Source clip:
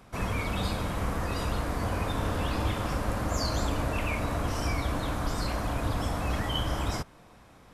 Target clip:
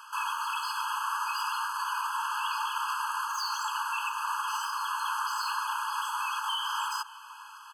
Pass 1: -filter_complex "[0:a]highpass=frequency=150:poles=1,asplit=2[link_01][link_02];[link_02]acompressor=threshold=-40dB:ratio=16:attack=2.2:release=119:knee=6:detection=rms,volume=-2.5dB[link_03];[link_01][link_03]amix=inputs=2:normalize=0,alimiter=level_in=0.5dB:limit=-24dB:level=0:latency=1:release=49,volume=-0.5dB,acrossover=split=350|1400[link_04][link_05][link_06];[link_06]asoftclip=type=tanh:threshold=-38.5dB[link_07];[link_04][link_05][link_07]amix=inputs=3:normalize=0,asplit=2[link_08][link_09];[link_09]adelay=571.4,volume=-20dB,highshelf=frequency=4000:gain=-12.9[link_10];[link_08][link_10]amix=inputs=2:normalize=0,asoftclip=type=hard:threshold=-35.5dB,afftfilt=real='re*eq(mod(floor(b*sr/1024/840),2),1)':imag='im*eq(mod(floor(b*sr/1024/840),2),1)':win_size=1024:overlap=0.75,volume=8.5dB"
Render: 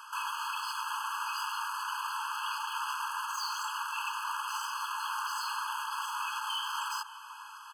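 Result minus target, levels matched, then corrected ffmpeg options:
hard clipping: distortion +39 dB
-filter_complex "[0:a]highpass=frequency=150:poles=1,asplit=2[link_01][link_02];[link_02]acompressor=threshold=-40dB:ratio=16:attack=2.2:release=119:knee=6:detection=rms,volume=-2.5dB[link_03];[link_01][link_03]amix=inputs=2:normalize=0,alimiter=level_in=0.5dB:limit=-24dB:level=0:latency=1:release=49,volume=-0.5dB,acrossover=split=350|1400[link_04][link_05][link_06];[link_06]asoftclip=type=tanh:threshold=-38.5dB[link_07];[link_04][link_05][link_07]amix=inputs=3:normalize=0,asplit=2[link_08][link_09];[link_09]adelay=571.4,volume=-20dB,highshelf=frequency=4000:gain=-12.9[link_10];[link_08][link_10]amix=inputs=2:normalize=0,asoftclip=type=hard:threshold=-23.5dB,afftfilt=real='re*eq(mod(floor(b*sr/1024/840),2),1)':imag='im*eq(mod(floor(b*sr/1024/840),2),1)':win_size=1024:overlap=0.75,volume=8.5dB"

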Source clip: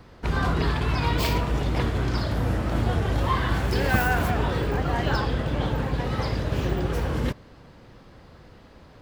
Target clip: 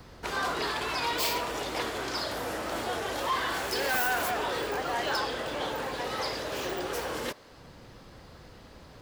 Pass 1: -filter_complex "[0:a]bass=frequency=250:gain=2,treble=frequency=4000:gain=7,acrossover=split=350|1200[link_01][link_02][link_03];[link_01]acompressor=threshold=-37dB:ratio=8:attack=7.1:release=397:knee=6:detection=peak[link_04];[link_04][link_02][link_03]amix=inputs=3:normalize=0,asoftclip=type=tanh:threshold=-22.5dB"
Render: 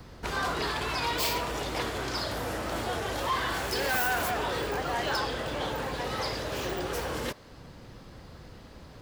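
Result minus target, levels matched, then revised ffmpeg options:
downward compressor: peak gain reduction −9 dB
-filter_complex "[0:a]bass=frequency=250:gain=2,treble=frequency=4000:gain=7,acrossover=split=350|1200[link_01][link_02][link_03];[link_01]acompressor=threshold=-47dB:ratio=8:attack=7.1:release=397:knee=6:detection=peak[link_04];[link_04][link_02][link_03]amix=inputs=3:normalize=0,asoftclip=type=tanh:threshold=-22.5dB"

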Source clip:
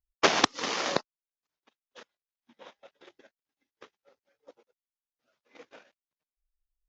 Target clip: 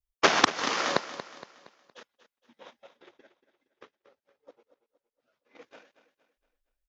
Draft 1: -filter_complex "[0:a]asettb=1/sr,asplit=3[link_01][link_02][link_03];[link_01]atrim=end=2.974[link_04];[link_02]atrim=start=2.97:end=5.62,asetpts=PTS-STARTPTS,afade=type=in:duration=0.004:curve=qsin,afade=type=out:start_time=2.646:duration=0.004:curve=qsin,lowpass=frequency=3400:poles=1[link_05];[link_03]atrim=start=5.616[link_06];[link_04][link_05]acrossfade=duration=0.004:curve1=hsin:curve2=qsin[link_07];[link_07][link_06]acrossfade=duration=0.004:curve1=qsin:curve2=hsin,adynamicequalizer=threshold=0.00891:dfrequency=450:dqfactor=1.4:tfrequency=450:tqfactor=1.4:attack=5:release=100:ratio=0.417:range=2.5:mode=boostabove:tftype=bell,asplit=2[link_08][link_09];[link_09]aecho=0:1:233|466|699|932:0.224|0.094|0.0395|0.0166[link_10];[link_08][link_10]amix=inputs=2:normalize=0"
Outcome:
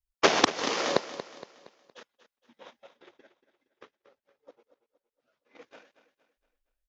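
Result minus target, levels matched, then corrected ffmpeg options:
500 Hz band +3.5 dB
-filter_complex "[0:a]asettb=1/sr,asplit=3[link_01][link_02][link_03];[link_01]atrim=end=2.974[link_04];[link_02]atrim=start=2.97:end=5.62,asetpts=PTS-STARTPTS,afade=type=in:duration=0.004:curve=qsin,afade=type=out:start_time=2.646:duration=0.004:curve=qsin,lowpass=frequency=3400:poles=1[link_05];[link_03]atrim=start=5.616[link_06];[link_04][link_05]acrossfade=duration=0.004:curve1=hsin:curve2=qsin[link_07];[link_07][link_06]acrossfade=duration=0.004:curve1=qsin:curve2=hsin,adynamicequalizer=threshold=0.00891:dfrequency=1400:dqfactor=1.4:tfrequency=1400:tqfactor=1.4:attack=5:release=100:ratio=0.417:range=2.5:mode=boostabove:tftype=bell,asplit=2[link_08][link_09];[link_09]aecho=0:1:233|466|699|932:0.224|0.094|0.0395|0.0166[link_10];[link_08][link_10]amix=inputs=2:normalize=0"

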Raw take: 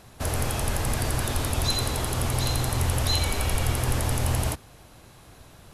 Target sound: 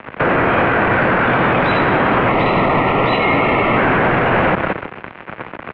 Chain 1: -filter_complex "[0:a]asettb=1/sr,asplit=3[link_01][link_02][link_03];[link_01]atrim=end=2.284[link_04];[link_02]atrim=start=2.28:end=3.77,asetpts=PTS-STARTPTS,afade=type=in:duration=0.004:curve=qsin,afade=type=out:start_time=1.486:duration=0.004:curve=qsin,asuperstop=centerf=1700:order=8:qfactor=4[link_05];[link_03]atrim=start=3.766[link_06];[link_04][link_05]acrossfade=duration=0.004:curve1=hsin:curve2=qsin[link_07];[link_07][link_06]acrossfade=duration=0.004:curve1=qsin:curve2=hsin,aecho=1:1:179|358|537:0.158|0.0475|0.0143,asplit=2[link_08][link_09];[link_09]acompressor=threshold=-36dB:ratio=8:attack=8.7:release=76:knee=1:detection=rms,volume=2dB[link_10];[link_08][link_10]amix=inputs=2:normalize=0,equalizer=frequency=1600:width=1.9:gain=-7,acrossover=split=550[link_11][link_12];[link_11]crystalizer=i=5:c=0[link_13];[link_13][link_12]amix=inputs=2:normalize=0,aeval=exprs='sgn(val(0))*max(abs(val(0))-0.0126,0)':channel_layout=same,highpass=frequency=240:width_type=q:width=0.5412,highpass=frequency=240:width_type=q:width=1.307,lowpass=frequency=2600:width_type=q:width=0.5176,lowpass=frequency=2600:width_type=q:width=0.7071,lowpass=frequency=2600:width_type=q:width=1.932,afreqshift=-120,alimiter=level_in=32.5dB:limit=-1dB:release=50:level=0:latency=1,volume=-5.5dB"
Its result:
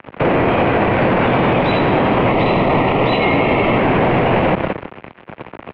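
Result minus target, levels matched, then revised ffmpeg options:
2,000 Hz band −4.0 dB
-filter_complex "[0:a]asettb=1/sr,asplit=3[link_01][link_02][link_03];[link_01]atrim=end=2.284[link_04];[link_02]atrim=start=2.28:end=3.77,asetpts=PTS-STARTPTS,afade=type=in:duration=0.004:curve=qsin,afade=type=out:start_time=1.486:duration=0.004:curve=qsin,asuperstop=centerf=1700:order=8:qfactor=4[link_05];[link_03]atrim=start=3.766[link_06];[link_04][link_05]acrossfade=duration=0.004:curve1=hsin:curve2=qsin[link_07];[link_07][link_06]acrossfade=duration=0.004:curve1=qsin:curve2=hsin,aecho=1:1:179|358|537:0.158|0.0475|0.0143,asplit=2[link_08][link_09];[link_09]acompressor=threshold=-36dB:ratio=8:attack=8.7:release=76:knee=1:detection=rms,volume=2dB[link_10];[link_08][link_10]amix=inputs=2:normalize=0,equalizer=frequency=1600:width=1.9:gain=5,acrossover=split=550[link_11][link_12];[link_11]crystalizer=i=5:c=0[link_13];[link_13][link_12]amix=inputs=2:normalize=0,aeval=exprs='sgn(val(0))*max(abs(val(0))-0.0126,0)':channel_layout=same,highpass=frequency=240:width_type=q:width=0.5412,highpass=frequency=240:width_type=q:width=1.307,lowpass=frequency=2600:width_type=q:width=0.5176,lowpass=frequency=2600:width_type=q:width=0.7071,lowpass=frequency=2600:width_type=q:width=1.932,afreqshift=-120,alimiter=level_in=32.5dB:limit=-1dB:release=50:level=0:latency=1,volume=-5.5dB"

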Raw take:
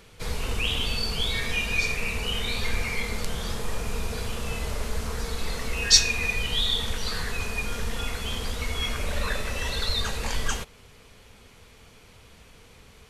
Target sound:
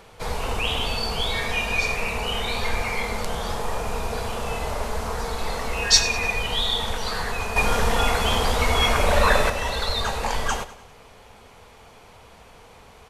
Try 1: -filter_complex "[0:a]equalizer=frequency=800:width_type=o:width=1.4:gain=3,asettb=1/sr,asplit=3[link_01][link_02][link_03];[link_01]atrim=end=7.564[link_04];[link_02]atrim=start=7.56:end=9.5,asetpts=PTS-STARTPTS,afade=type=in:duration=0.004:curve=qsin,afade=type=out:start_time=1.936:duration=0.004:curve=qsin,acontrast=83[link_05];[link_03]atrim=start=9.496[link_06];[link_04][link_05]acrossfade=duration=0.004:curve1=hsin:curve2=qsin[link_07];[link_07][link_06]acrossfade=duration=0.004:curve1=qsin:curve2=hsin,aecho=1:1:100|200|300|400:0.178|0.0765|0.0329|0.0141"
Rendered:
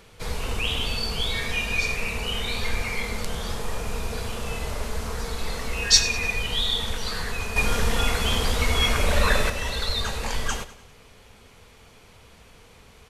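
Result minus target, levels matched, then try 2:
1,000 Hz band −5.5 dB
-filter_complex "[0:a]equalizer=frequency=800:width_type=o:width=1.4:gain=12,asettb=1/sr,asplit=3[link_01][link_02][link_03];[link_01]atrim=end=7.564[link_04];[link_02]atrim=start=7.56:end=9.5,asetpts=PTS-STARTPTS,afade=type=in:duration=0.004:curve=qsin,afade=type=out:start_time=1.936:duration=0.004:curve=qsin,acontrast=83[link_05];[link_03]atrim=start=9.496[link_06];[link_04][link_05]acrossfade=duration=0.004:curve1=hsin:curve2=qsin[link_07];[link_07][link_06]acrossfade=duration=0.004:curve1=qsin:curve2=hsin,aecho=1:1:100|200|300|400:0.178|0.0765|0.0329|0.0141"

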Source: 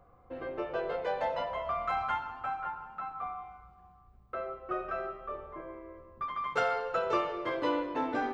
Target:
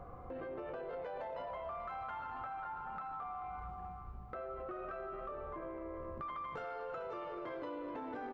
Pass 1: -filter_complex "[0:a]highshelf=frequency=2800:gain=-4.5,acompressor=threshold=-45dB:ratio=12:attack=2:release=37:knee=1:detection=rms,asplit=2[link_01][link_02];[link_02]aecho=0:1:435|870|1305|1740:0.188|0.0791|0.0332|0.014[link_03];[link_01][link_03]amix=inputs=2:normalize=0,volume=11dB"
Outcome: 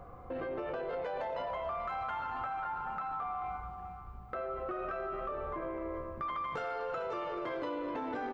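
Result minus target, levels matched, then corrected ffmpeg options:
downward compressor: peak gain reduction −5.5 dB; 4,000 Hz band +3.0 dB
-filter_complex "[0:a]highshelf=frequency=2800:gain=-11,acompressor=threshold=-51.5dB:ratio=12:attack=2:release=37:knee=1:detection=rms,asplit=2[link_01][link_02];[link_02]aecho=0:1:435|870|1305|1740:0.188|0.0791|0.0332|0.014[link_03];[link_01][link_03]amix=inputs=2:normalize=0,volume=11dB"

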